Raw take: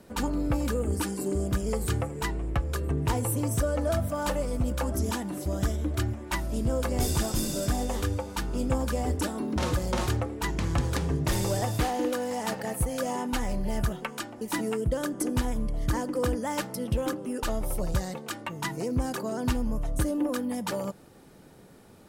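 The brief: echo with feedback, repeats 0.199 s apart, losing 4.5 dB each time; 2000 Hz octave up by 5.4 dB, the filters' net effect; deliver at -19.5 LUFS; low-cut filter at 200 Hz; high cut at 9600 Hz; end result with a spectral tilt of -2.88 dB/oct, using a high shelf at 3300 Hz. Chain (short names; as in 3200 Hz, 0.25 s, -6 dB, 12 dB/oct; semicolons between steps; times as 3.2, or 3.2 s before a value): HPF 200 Hz; LPF 9600 Hz; bell 2000 Hz +4 dB; high shelf 3300 Hz +9 dB; feedback echo 0.199 s, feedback 60%, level -4.5 dB; gain +8.5 dB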